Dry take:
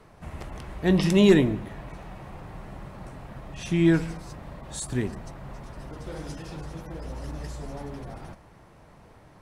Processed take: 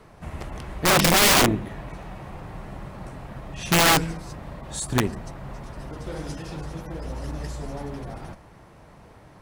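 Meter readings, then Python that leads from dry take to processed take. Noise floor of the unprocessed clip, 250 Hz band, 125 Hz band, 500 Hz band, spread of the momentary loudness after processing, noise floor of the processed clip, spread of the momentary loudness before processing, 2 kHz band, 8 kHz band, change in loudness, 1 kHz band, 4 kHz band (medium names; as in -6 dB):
-53 dBFS, -3.5 dB, 0.0 dB, -1.0 dB, 22 LU, -50 dBFS, 21 LU, +10.5 dB, +15.0 dB, +4.0 dB, +14.5 dB, +12.5 dB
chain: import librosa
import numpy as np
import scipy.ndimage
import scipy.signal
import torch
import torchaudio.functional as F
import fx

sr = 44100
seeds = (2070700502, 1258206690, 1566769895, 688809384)

y = fx.cheby_harmonics(x, sr, harmonics=(3, 7), levels_db=(-27, -26), full_scale_db=-7.5)
y = (np.mod(10.0 ** (20.0 / 20.0) * y + 1.0, 2.0) - 1.0) / 10.0 ** (20.0 / 20.0)
y = F.gain(torch.from_numpy(y), 9.0).numpy()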